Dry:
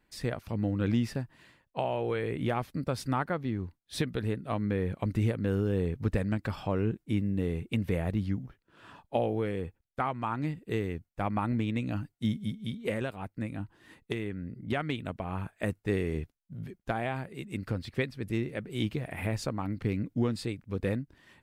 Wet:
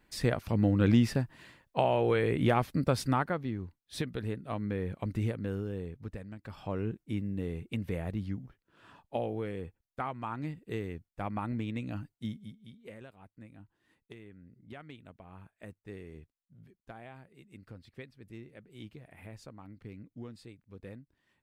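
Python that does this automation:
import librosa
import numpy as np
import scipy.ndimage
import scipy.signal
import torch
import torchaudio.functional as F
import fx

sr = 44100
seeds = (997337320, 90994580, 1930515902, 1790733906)

y = fx.gain(x, sr, db=fx.line((2.92, 4.0), (3.6, -4.0), (5.33, -4.0), (6.35, -15.5), (6.7, -5.0), (12.14, -5.0), (12.63, -16.0)))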